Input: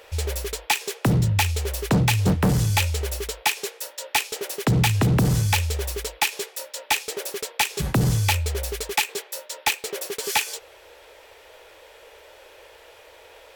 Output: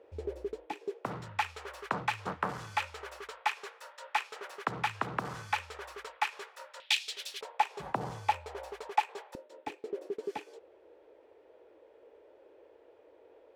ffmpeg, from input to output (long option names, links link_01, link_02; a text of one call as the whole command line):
ffmpeg -i in.wav -af "asetnsamples=nb_out_samples=441:pad=0,asendcmd='1.05 bandpass f 1200;6.8 bandpass f 3500;7.41 bandpass f 880;9.35 bandpass f 310',bandpass=frequency=320:width_type=q:width=2.2:csg=0" out.wav